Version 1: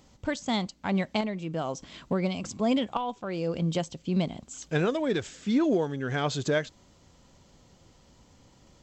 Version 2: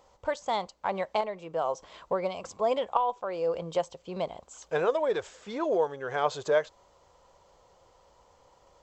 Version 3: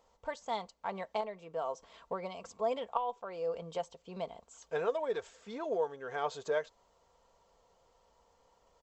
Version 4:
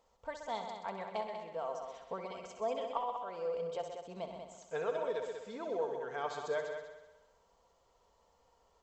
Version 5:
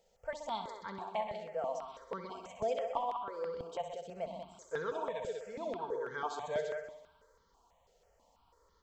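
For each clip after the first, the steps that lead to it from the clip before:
graphic EQ 125/250/500/1000 Hz -6/-12/+11/+11 dB; gain -6.5 dB
comb 4.4 ms, depth 40%; gain -8 dB
multi-head echo 64 ms, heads all three, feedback 42%, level -10 dB; gain -3.5 dB
step phaser 6.1 Hz 290–2600 Hz; gain +3.5 dB

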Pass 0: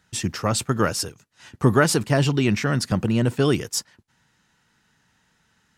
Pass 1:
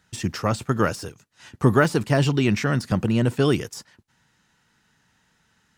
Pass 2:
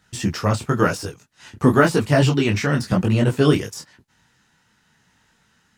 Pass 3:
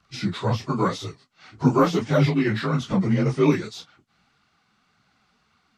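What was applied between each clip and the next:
de-esser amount 60%
detuned doubles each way 33 cents; gain +7 dB
inharmonic rescaling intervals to 88%; flange 1.8 Hz, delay 0.6 ms, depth 5.4 ms, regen +46%; gain +2.5 dB

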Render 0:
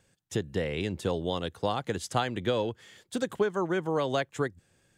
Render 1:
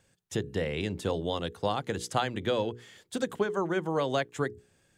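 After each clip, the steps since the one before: notches 60/120/180/240/300/360/420/480 Hz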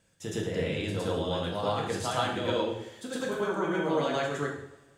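reverse echo 0.111 s -4.5 dB; two-slope reverb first 0.68 s, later 2 s, from -21 dB, DRR -1.5 dB; gain -4 dB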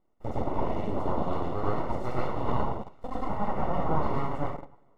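full-wave rectifier; in parallel at -1.5 dB: bit-crush 6-bit; on the sum: polynomial smoothing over 65 samples

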